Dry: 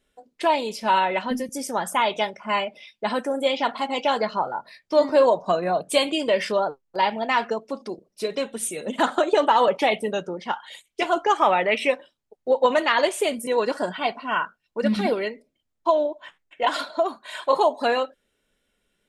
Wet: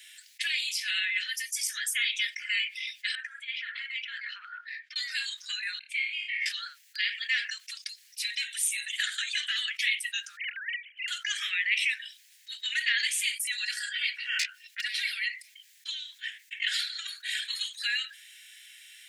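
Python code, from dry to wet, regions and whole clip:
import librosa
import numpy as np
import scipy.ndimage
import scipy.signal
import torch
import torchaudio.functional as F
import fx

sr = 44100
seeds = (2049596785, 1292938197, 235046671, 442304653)

y = fx.chain(x, sr, fx.lowpass(hz=1400.0, slope=12),
    fx.over_compress(threshold_db=-28.0, ratio=-1.0), at=(3.15, 4.96))
y = fx.chain(y, sr, fx.bandpass_q(hz=2200.0, q=11.0),
    fx.room_flutter(wall_m=4.8, rt60_s=0.33), at=(5.79, 6.46))
y = fx.chain(y, sr, fx.sine_speech(),
    fx.over_compress(threshold_db=-30.0, ratio=-0.5), at=(10.37, 11.08))
y = fx.chain(y, sr, fx.self_delay(depth_ms=0.66),
    fx.notch_comb(f0_hz=330.0), at=(14.39, 14.81))
y = scipy.signal.sosfilt(scipy.signal.butter(12, 1700.0, 'highpass', fs=sr, output='sos'), y)
y = fx.env_flatten(y, sr, amount_pct=50)
y = y * 10.0 ** (-2.5 / 20.0)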